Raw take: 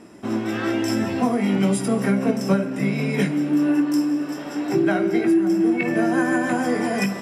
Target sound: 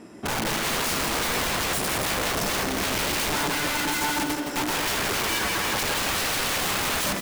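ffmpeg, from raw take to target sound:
ffmpeg -i in.wav -af "aeval=exprs='(mod(12.6*val(0)+1,2)-1)/12.6':channel_layout=same,aecho=1:1:167|334|501|668|835:0.447|0.205|0.0945|0.0435|0.02" out.wav

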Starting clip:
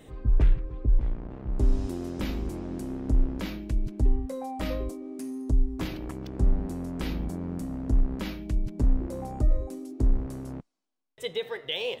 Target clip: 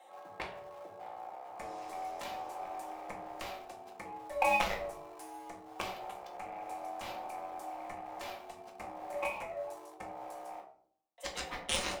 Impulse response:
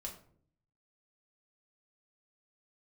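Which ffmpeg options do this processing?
-filter_complex "[0:a]asplit=2[link_01][link_02];[link_02]aeval=exprs='val(0)*gte(abs(val(0)),0.0188)':channel_layout=same,volume=-9dB[link_03];[link_01][link_03]amix=inputs=2:normalize=0,highpass=frequency=720:width_type=q:width=7.2,afreqshift=54,aeval=exprs='0.168*(cos(1*acos(clip(val(0)/0.168,-1,1)))-cos(1*PI/2))+0.075*(cos(3*acos(clip(val(0)/0.168,-1,1)))-cos(3*PI/2))':channel_layout=same[link_04];[1:a]atrim=start_sample=2205[link_05];[link_04][link_05]afir=irnorm=-1:irlink=0,volume=5.5dB"

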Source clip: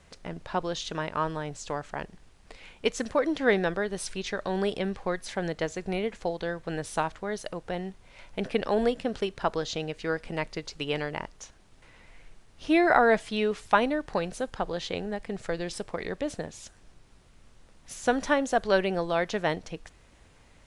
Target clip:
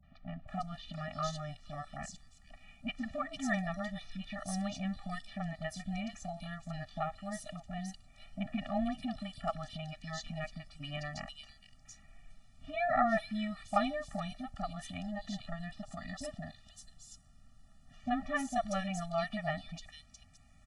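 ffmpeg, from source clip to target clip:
ffmpeg -i in.wav -filter_complex "[0:a]asettb=1/sr,asplit=3[link_01][link_02][link_03];[link_01]atrim=end=14.954[link_04];[link_02]atrim=start=14.95:end=17.97,asetpts=PTS-STARTPTS,afade=type=in:duration=0.004:curve=qsin,afade=type=out:start_time=3.016:duration=0.004:curve=qsin,bandreject=frequency=2300:width=8.6[link_05];[link_03]atrim=start=17.966[link_06];[link_04][link_05]acrossfade=duration=0.004:curve1=hsin:curve2=qsin[link_07];[link_07][link_06]acrossfade=duration=0.004:curve1=qsin:curve2=hsin,acrossover=split=590|3300[link_08][link_09][link_10];[link_09]adelay=30[link_11];[link_10]adelay=480[link_12];[link_08][link_11][link_12]amix=inputs=3:normalize=0,afftfilt=real='re*eq(mod(floor(b*sr/1024/280),2),0)':imag='im*eq(mod(floor(b*sr/1024/280),2),0)':win_size=1024:overlap=0.75,volume=-3.5dB" out.wav

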